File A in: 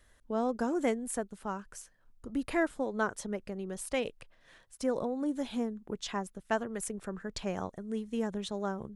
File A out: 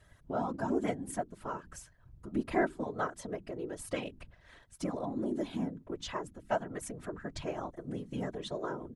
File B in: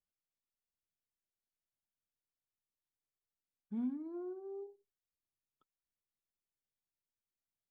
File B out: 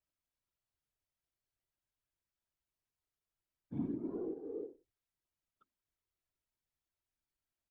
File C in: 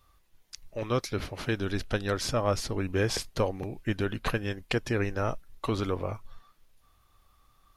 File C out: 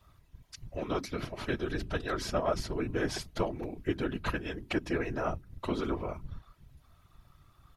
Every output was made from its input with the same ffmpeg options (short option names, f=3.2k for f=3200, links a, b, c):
-filter_complex "[0:a]highshelf=f=3.9k:g=-7,bandreject=f=50:t=h:w=6,bandreject=f=100:t=h:w=6,bandreject=f=150:t=h:w=6,bandreject=f=200:t=h:w=6,bandreject=f=250:t=h:w=6,bandreject=f=300:t=h:w=6,aecho=1:1:3.1:0.88,asplit=2[a][b];[b]acompressor=threshold=-41dB:ratio=6,volume=1dB[c];[a][c]amix=inputs=2:normalize=0,afftfilt=real='hypot(re,im)*cos(2*PI*random(0))':imag='hypot(re,im)*sin(2*PI*random(1))':win_size=512:overlap=0.75"